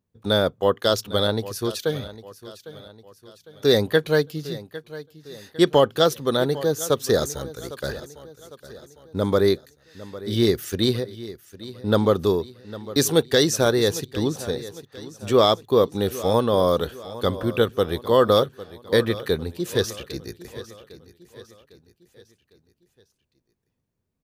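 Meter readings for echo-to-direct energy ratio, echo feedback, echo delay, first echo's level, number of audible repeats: -15.5 dB, 46%, 804 ms, -16.5 dB, 3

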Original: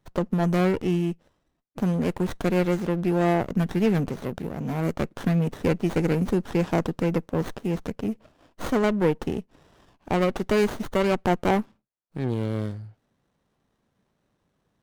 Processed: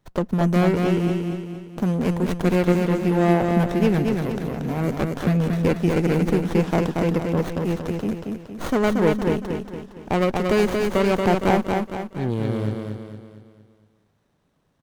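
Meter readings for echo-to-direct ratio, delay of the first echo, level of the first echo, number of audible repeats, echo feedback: -3.0 dB, 231 ms, -4.0 dB, 5, 46%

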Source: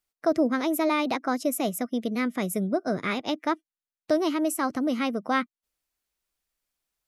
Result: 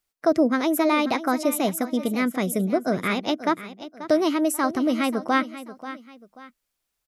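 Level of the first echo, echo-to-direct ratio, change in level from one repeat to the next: -14.0 dB, -13.5 dB, -9.0 dB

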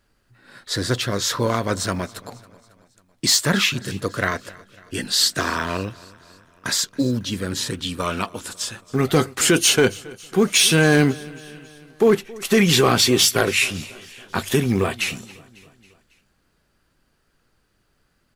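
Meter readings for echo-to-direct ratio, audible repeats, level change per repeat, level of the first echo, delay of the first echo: -20.5 dB, 3, -5.0 dB, -22.0 dB, 274 ms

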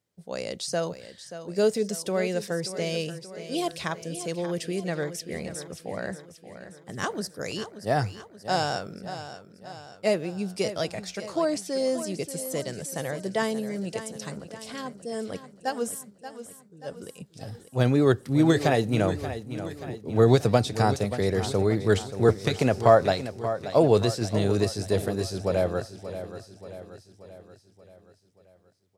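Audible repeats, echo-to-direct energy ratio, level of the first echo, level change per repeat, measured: 5, -10.5 dB, -12.0 dB, -5.5 dB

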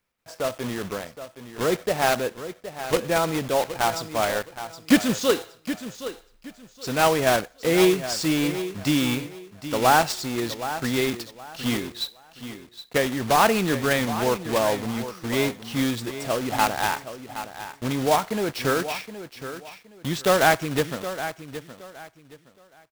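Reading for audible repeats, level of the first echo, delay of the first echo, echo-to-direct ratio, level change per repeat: 2, -12.0 dB, 769 ms, -11.5 dB, -12.0 dB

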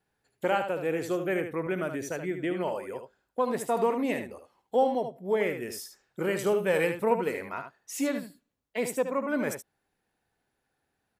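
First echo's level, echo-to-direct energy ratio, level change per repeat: -8.0 dB, -8.0 dB, no regular repeats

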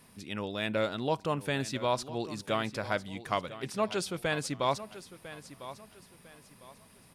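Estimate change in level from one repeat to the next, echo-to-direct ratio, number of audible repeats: -10.0 dB, -14.0 dB, 3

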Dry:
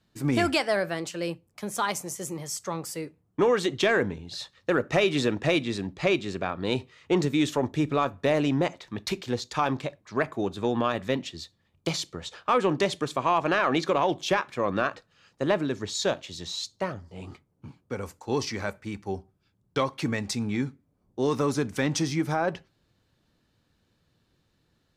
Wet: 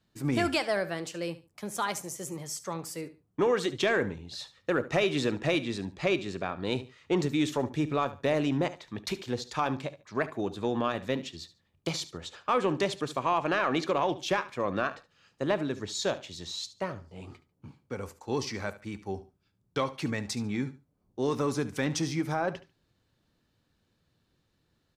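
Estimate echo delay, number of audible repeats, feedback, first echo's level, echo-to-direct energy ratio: 72 ms, 2, 23%, -16.0 dB, -16.0 dB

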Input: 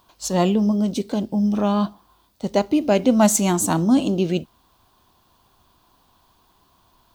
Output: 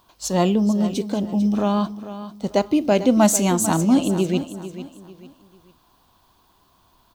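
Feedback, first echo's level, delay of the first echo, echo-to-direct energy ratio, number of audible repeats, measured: 33%, -13.0 dB, 446 ms, -12.5 dB, 3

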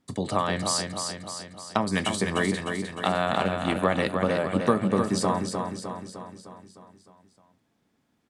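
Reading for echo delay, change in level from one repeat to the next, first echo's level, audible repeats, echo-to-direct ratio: 305 ms, -5.0 dB, -5.5 dB, 6, -4.0 dB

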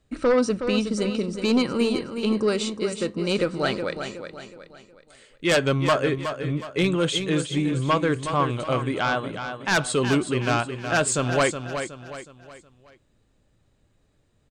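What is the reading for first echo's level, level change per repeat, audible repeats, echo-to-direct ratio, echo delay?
-8.5 dB, -8.0 dB, 4, -7.5 dB, 368 ms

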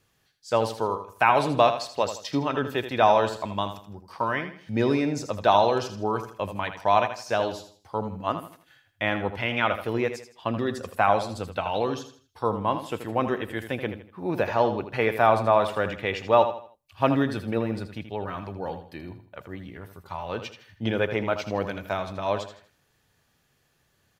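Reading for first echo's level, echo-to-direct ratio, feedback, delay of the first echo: -10.0 dB, -9.5 dB, 34%, 80 ms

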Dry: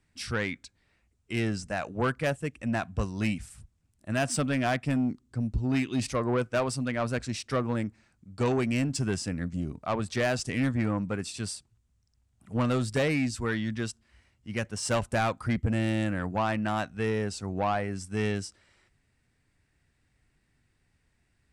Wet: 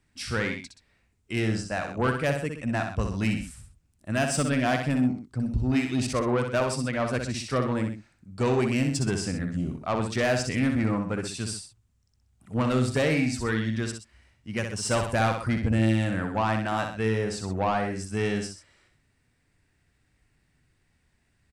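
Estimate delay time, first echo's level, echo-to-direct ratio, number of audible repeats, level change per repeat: 63 ms, -6.0 dB, -5.0 dB, 2, -6.0 dB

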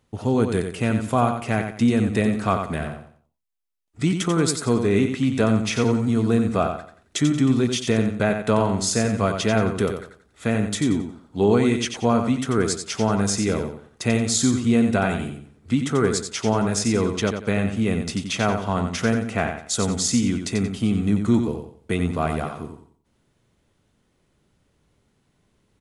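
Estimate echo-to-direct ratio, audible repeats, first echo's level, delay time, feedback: -6.5 dB, 3, -7.0 dB, 90 ms, 30%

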